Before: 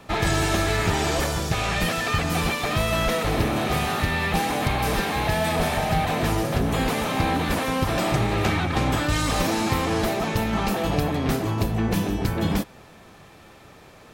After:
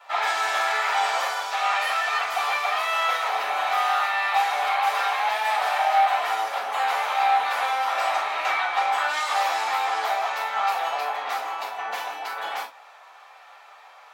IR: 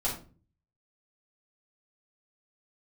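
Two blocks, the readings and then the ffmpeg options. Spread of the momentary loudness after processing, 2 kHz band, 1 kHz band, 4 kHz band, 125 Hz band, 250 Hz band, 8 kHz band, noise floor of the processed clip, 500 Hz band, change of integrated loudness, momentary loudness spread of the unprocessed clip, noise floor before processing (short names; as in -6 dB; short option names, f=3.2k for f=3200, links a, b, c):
8 LU, +2.0 dB, +5.5 dB, -1.0 dB, under -40 dB, under -30 dB, -6.5 dB, -49 dBFS, -6.5 dB, 0.0 dB, 2 LU, -48 dBFS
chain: -filter_complex "[0:a]highpass=f=850:w=0.5412,highpass=f=850:w=1.3066,equalizer=f=12k:t=o:w=2.3:g=-13.5[a];[1:a]atrim=start_sample=2205,afade=t=out:st=0.14:d=0.01,atrim=end_sample=6615[b];[a][b]afir=irnorm=-1:irlink=0"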